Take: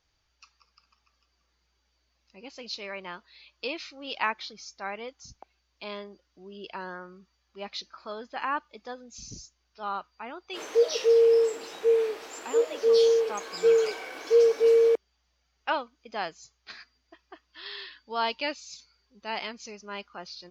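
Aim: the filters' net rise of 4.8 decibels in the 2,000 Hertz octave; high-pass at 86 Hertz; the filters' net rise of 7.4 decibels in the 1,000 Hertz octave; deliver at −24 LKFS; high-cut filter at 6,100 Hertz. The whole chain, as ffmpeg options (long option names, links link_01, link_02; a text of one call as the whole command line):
ffmpeg -i in.wav -af "highpass=86,lowpass=6100,equalizer=frequency=1000:width_type=o:gain=8,equalizer=frequency=2000:width_type=o:gain=3.5,volume=1.5dB" out.wav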